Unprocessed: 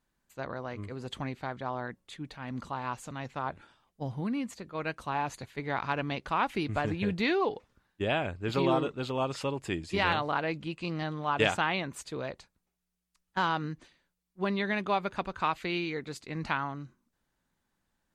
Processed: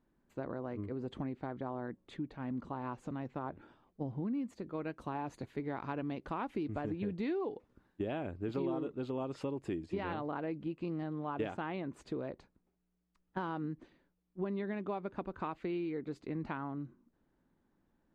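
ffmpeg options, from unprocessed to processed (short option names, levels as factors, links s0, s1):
-filter_complex "[0:a]asettb=1/sr,asplit=3[s0][s1][s2];[s0]atrim=end=4.344[s3];[s1]atrim=start=4.34:end=9.86,asetpts=PTS-STARTPTS,afade=t=in:d=0.004:c=qsin,afade=t=out:st=5.516:d=0.004:c=qsin,aemphasis=mode=production:type=cd[s4];[s2]atrim=start=9.856[s5];[s3][s4]acrossfade=d=0.004:c1=hsin:c2=qsin[s6];[s6][s5]acrossfade=d=0.004:c1=qsin:c2=hsin,lowpass=f=1000:p=1,equalizer=f=310:w=1.1:g=8.5,acompressor=threshold=0.00891:ratio=3,volume=1.33"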